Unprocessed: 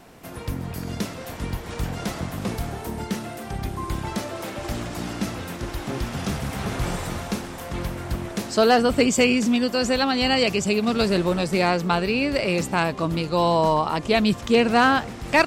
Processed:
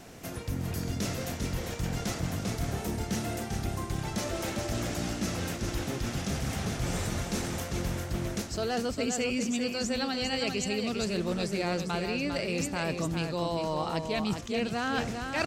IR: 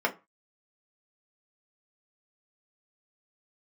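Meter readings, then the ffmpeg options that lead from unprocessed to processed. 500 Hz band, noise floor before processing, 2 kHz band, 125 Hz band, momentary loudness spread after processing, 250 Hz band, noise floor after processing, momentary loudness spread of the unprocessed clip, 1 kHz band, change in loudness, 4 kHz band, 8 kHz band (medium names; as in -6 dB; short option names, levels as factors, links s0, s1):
-10.0 dB, -36 dBFS, -9.5 dB, -4.0 dB, 4 LU, -8.0 dB, -38 dBFS, 13 LU, -12.0 dB, -8.5 dB, -7.5 dB, -2.5 dB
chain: -af "equalizer=f=100:t=o:w=0.67:g=3,equalizer=f=1000:t=o:w=0.67:g=-5,equalizer=f=6300:t=o:w=0.67:g=6,areverse,acompressor=threshold=0.0355:ratio=6,areverse,aecho=1:1:401:0.501"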